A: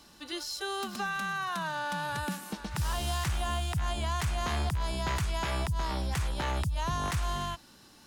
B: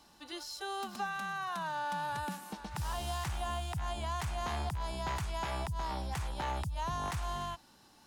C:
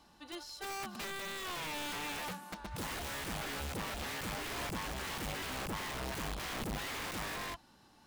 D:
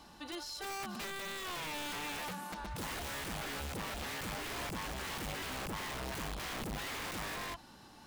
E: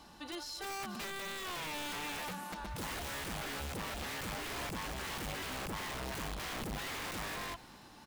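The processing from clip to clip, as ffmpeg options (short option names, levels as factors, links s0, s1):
-af "equalizer=f=830:t=o:w=0.64:g=7,volume=0.473"
-af "aeval=exprs='(mod(47.3*val(0)+1,2)-1)/47.3':c=same,bass=f=250:g=2,treble=f=4000:g=-5,volume=0.891"
-af "alimiter=level_in=7.94:limit=0.0631:level=0:latency=1:release=34,volume=0.126,volume=2.24"
-af "aecho=1:1:241|482|723|964|1205:0.0891|0.0526|0.031|0.0183|0.0108"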